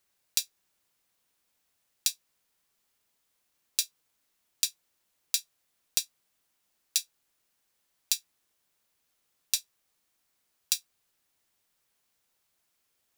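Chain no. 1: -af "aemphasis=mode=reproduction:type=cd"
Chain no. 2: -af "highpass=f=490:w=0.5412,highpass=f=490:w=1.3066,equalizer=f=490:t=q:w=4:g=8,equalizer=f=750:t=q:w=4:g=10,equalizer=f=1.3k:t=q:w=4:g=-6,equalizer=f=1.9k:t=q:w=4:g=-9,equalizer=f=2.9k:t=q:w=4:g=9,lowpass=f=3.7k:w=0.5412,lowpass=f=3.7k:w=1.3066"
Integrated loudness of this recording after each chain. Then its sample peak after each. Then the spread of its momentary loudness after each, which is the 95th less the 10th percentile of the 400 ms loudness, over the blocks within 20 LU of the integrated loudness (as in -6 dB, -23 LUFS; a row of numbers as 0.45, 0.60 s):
-37.0, -39.5 LUFS; -10.5, -16.0 dBFS; 1, 4 LU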